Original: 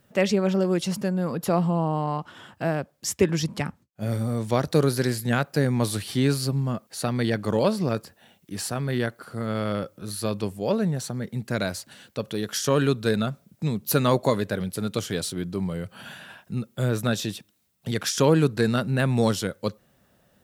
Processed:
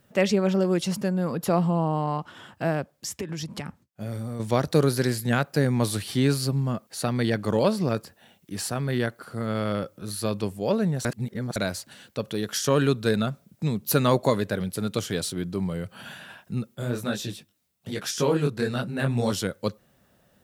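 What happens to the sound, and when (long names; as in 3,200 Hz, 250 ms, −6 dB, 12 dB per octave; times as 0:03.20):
0:02.94–0:04.40: downward compressor 5 to 1, threshold −29 dBFS
0:11.05–0:11.56: reverse
0:16.74–0:19.31: micro pitch shift up and down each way 36 cents → 53 cents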